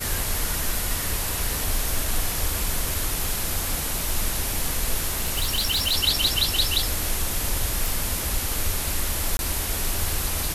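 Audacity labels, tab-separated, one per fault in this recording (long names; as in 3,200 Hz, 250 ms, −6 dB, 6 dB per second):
5.070000	5.940000	clipping −18 dBFS
7.860000	7.860000	click
9.370000	9.390000	drop-out 21 ms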